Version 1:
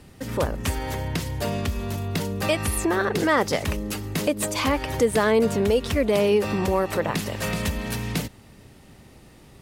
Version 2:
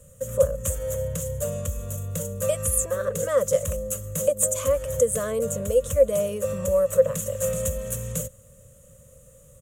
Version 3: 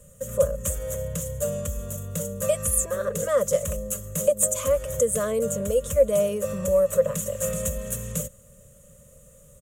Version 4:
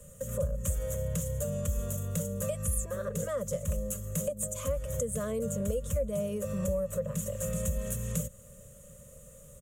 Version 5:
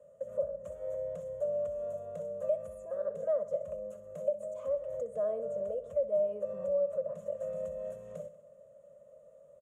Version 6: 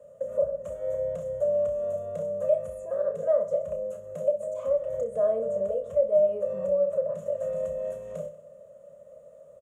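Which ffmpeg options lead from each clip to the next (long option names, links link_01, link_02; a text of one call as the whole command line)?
ffmpeg -i in.wav -af "firequalizer=gain_entry='entry(150,0);entry(350,-27);entry(530,14);entry(790,-27);entry(1100,-5);entry(2100,-15);entry(3200,-9);entry(4800,-19);entry(6800,12);entry(10000,7)':delay=0.05:min_phase=1,volume=-2dB" out.wav
ffmpeg -i in.wav -af "aecho=1:1:4.9:0.36" out.wav
ffmpeg -i in.wav -filter_complex "[0:a]acrossover=split=220[link_01][link_02];[link_02]acompressor=threshold=-36dB:ratio=3[link_03];[link_01][link_03]amix=inputs=2:normalize=0" out.wav
ffmpeg -i in.wav -af "bandpass=frequency=650:width_type=q:width=6:csg=0,aecho=1:1:63|126|189|252|315|378:0.2|0.116|0.0671|0.0389|0.0226|0.0131,volume=7.5dB" out.wav
ffmpeg -i in.wav -filter_complex "[0:a]asplit=2[link_01][link_02];[link_02]adelay=31,volume=-7dB[link_03];[link_01][link_03]amix=inputs=2:normalize=0,volume=6.5dB" out.wav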